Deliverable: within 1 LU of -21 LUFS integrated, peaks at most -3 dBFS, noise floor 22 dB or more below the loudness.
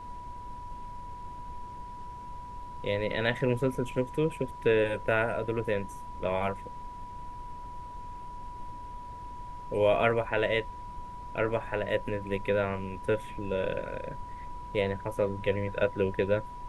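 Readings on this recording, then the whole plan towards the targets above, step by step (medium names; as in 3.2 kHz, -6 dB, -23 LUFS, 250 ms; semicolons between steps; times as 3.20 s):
steady tone 980 Hz; tone level -41 dBFS; noise floor -43 dBFS; noise floor target -53 dBFS; loudness -30.5 LUFS; peak level -11.0 dBFS; loudness target -21.0 LUFS
-> band-stop 980 Hz, Q 30; noise print and reduce 10 dB; trim +9.5 dB; peak limiter -3 dBFS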